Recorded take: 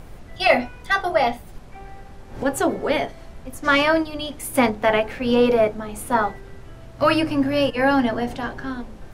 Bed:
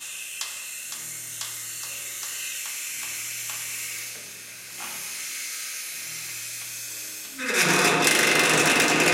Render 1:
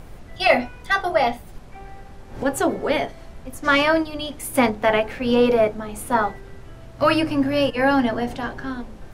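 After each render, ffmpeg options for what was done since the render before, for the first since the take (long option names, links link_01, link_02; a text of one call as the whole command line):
ffmpeg -i in.wav -af anull out.wav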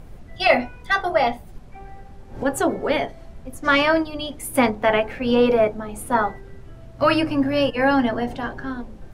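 ffmpeg -i in.wav -af "afftdn=noise_reduction=6:noise_floor=-41" out.wav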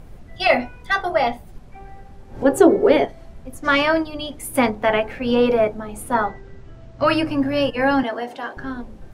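ffmpeg -i in.wav -filter_complex "[0:a]asettb=1/sr,asplit=3[link_01][link_02][link_03];[link_01]atrim=end=2.444[link_04];[link_02]atrim=start=2.44:end=3.05,asetpts=PTS-STARTPTS,afade=type=in:duration=0.004:curve=qsin,afade=type=out:start_time=0.606:duration=0.004:curve=qsin,equalizer=frequency=390:width_type=o:width=1:gain=13[link_05];[link_03]atrim=start=3.046[link_06];[link_04][link_05]acrossfade=duration=0.004:curve1=hsin:curve2=qsin[link_07];[link_07][link_06]acrossfade=duration=0.004:curve1=qsin:curve2=hsin,asettb=1/sr,asplit=3[link_08][link_09][link_10];[link_08]atrim=end=6.254[link_11];[link_09]atrim=start=6.25:end=7.07,asetpts=PTS-STARTPTS,afade=type=in:duration=0.004:curve=qsin,afade=type=out:start_time=0.816:duration=0.004:curve=qsin,lowpass=frequency=7500:width=0.5412,lowpass=frequency=7500:width=1.3066[link_12];[link_10]atrim=start=7.066[link_13];[link_11][link_12]acrossfade=duration=0.004:curve1=hsin:curve2=qsin[link_14];[link_14][link_13]acrossfade=duration=0.004:curve1=qsin:curve2=hsin,asettb=1/sr,asplit=3[link_15][link_16][link_17];[link_15]atrim=end=8.034[link_18];[link_16]atrim=start=8.03:end=8.57,asetpts=PTS-STARTPTS,afade=type=in:duration=0.004:curve=qsin,afade=type=out:start_time=0.536:duration=0.004:curve=qsin,highpass=390[link_19];[link_17]atrim=start=8.566[link_20];[link_18][link_19]acrossfade=duration=0.004:curve1=hsin:curve2=qsin[link_21];[link_21][link_20]acrossfade=duration=0.004:curve1=qsin:curve2=hsin" out.wav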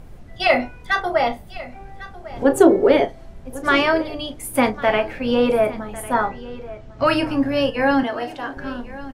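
ffmpeg -i in.wav -filter_complex "[0:a]asplit=2[link_01][link_02];[link_02]adelay=36,volume=-13dB[link_03];[link_01][link_03]amix=inputs=2:normalize=0,aecho=1:1:1100:0.133" out.wav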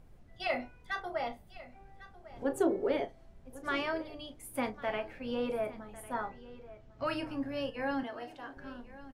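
ffmpeg -i in.wav -af "volume=-16.5dB" out.wav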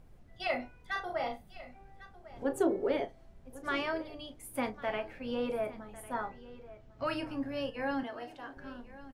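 ffmpeg -i in.wav -filter_complex "[0:a]asettb=1/sr,asplit=3[link_01][link_02][link_03];[link_01]atrim=end=0.914[link_04];[link_02]atrim=start=0.91:end=1.73,asetpts=PTS-STARTPTS,afade=type=in:duration=0.004:curve=qsin,afade=type=out:start_time=0.816:duration=0.004:curve=qsin,asplit=2[link_05][link_06];[link_06]adelay=40,volume=-6dB[link_07];[link_05][link_07]amix=inputs=2:normalize=0,atrim=end_sample=36162[link_08];[link_03]atrim=start=1.726[link_09];[link_04][link_08]acrossfade=duration=0.004:curve1=hsin:curve2=qsin[link_10];[link_10][link_09]acrossfade=duration=0.004:curve1=qsin:curve2=hsin" out.wav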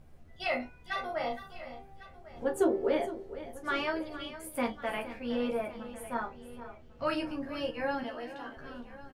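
ffmpeg -i in.wav -filter_complex "[0:a]asplit=2[link_01][link_02];[link_02]adelay=13,volume=-2.5dB[link_03];[link_01][link_03]amix=inputs=2:normalize=0,aecho=1:1:463:0.211" out.wav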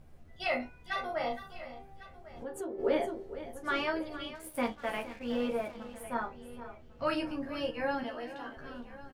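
ffmpeg -i in.wav -filter_complex "[0:a]asplit=3[link_01][link_02][link_03];[link_01]afade=type=out:start_time=1.66:duration=0.02[link_04];[link_02]acompressor=threshold=-41dB:ratio=2.5:attack=3.2:release=140:knee=1:detection=peak,afade=type=in:start_time=1.66:duration=0.02,afade=type=out:start_time=2.78:duration=0.02[link_05];[link_03]afade=type=in:start_time=2.78:duration=0.02[link_06];[link_04][link_05][link_06]amix=inputs=3:normalize=0,asettb=1/sr,asplit=3[link_07][link_08][link_09];[link_07]atrim=end=4.354[link_10];[link_08]atrim=start=4.35:end=6.04,asetpts=PTS-STARTPTS,afade=type=in:duration=0.004:curve=qsin,afade=type=out:start_time=1.686:duration=0.004:curve=qsin,aeval=exprs='sgn(val(0))*max(abs(val(0))-0.00224,0)':channel_layout=same[link_11];[link_09]atrim=start=6.036[link_12];[link_10][link_11]acrossfade=duration=0.004:curve1=hsin:curve2=qsin[link_13];[link_13][link_12]acrossfade=duration=0.004:curve1=qsin:curve2=hsin" out.wav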